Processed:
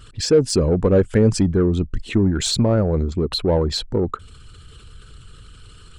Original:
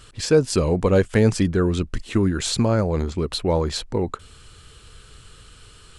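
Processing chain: resonances exaggerated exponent 1.5; in parallel at -4.5 dB: saturation -20.5 dBFS, distortion -8 dB

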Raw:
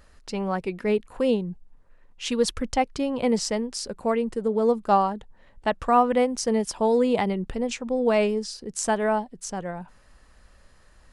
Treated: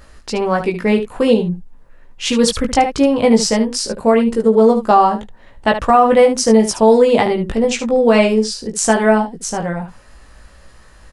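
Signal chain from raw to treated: on a send: early reflections 18 ms -3.5 dB, 74 ms -10 dB; on the sum: loudness maximiser +10.5 dB; trim -1 dB

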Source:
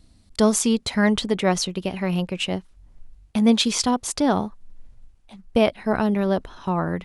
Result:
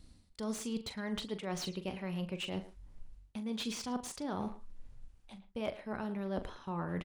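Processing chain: band-stop 680 Hz, Q 12; reverse; compression 20:1, threshold -30 dBFS, peak gain reduction 19.5 dB; reverse; doubling 41 ms -11 dB; speakerphone echo 110 ms, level -13 dB; slew-rate limiter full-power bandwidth 90 Hz; trim -4 dB

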